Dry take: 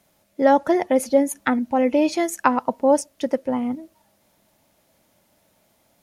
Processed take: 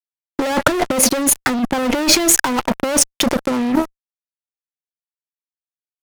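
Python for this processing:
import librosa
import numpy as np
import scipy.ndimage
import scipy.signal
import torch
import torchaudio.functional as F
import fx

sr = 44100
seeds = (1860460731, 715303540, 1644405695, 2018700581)

y = fx.fuzz(x, sr, gain_db=31.0, gate_db=-39.0)
y = fx.over_compress(y, sr, threshold_db=-19.0, ratio=-0.5)
y = y * 10.0 ** (4.5 / 20.0)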